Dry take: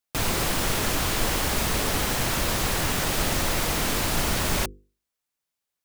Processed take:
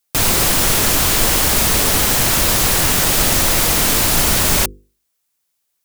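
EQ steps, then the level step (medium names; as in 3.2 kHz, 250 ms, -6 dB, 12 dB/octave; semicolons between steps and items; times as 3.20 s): treble shelf 5 kHz +8.5 dB; +7.0 dB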